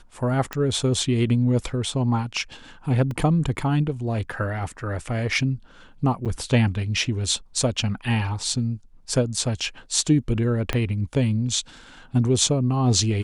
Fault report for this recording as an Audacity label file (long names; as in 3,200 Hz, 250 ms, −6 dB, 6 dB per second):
0.530000	0.530000	click −12 dBFS
3.110000	3.110000	drop-out 2 ms
6.250000	6.260000	drop-out 7.6 ms
9.600000	9.610000	drop-out 5.5 ms
10.730000	10.730000	click −10 dBFS